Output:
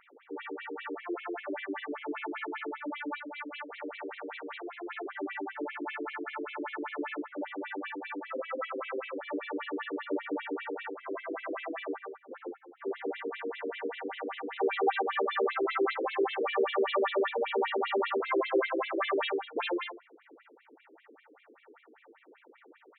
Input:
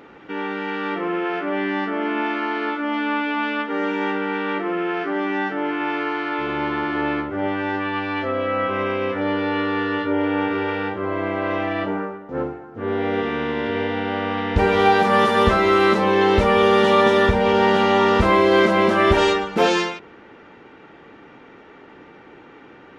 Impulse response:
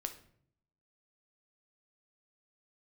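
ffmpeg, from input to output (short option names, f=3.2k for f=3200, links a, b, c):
-filter_complex "[0:a]asettb=1/sr,asplit=3[a][b][c];[a]atrim=end=3.154[d];[b]atrim=start=3.15:end=4.97,asetpts=PTS-STARTPTS,afade=t=in:d=0.004:c=qsin,afade=t=out:st=1.816:d=0.004:c=qsin,aeval=exprs='max(val(0),0)':c=same[e];[c]atrim=start=4.966[f];[d][e]acrossfade=d=0.004:c1=hsin:c2=qsin[g];[g][f]acrossfade=d=0.004:c1=qsin:c2=hsin,afftfilt=real='re*between(b*sr/1024,340*pow(3000/340,0.5+0.5*sin(2*PI*5.1*pts/sr))/1.41,340*pow(3000/340,0.5+0.5*sin(2*PI*5.1*pts/sr))*1.41)':imag='im*between(b*sr/1024,340*pow(3000/340,0.5+0.5*sin(2*PI*5.1*pts/sr))/1.41,340*pow(3000/340,0.5+0.5*sin(2*PI*5.1*pts/sr))*1.41)':win_size=1024:overlap=0.75,volume=-7dB"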